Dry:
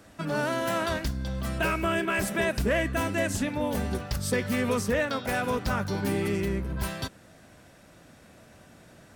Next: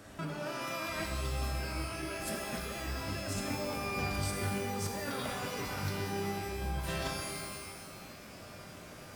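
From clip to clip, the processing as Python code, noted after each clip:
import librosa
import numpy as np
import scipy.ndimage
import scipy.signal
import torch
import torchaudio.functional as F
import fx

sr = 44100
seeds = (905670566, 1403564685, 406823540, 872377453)

y = fx.over_compress(x, sr, threshold_db=-35.0, ratio=-1.0)
y = fx.rev_shimmer(y, sr, seeds[0], rt60_s=1.6, semitones=12, shimmer_db=-2, drr_db=2.0)
y = F.gain(torch.from_numpy(y), -6.0).numpy()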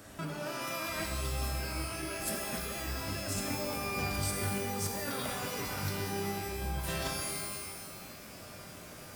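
y = fx.high_shelf(x, sr, hz=7900.0, db=9.0)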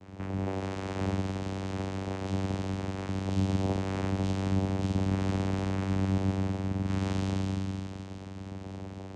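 y = fx.rev_fdn(x, sr, rt60_s=2.3, lf_ratio=1.0, hf_ratio=0.85, size_ms=29.0, drr_db=-5.0)
y = fx.vocoder(y, sr, bands=4, carrier='saw', carrier_hz=95.8)
y = F.gain(torch.from_numpy(y), 1.0).numpy()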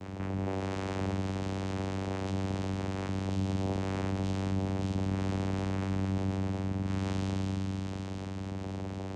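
y = fx.env_flatten(x, sr, amount_pct=50)
y = F.gain(torch.from_numpy(y), -4.5).numpy()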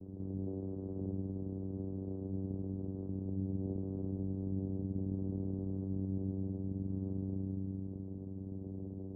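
y = fx.ladder_lowpass(x, sr, hz=470.0, resonance_pct=30)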